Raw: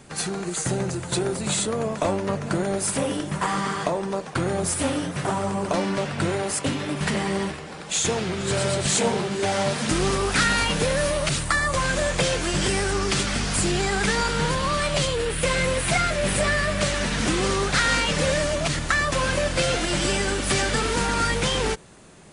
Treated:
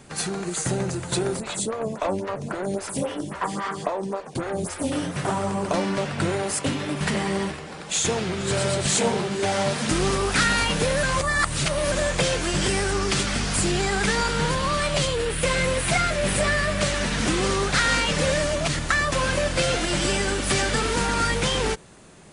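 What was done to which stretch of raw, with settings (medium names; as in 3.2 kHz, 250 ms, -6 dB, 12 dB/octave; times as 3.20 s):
1.40–4.92 s: lamp-driven phase shifter 3.7 Hz
11.03–11.92 s: reverse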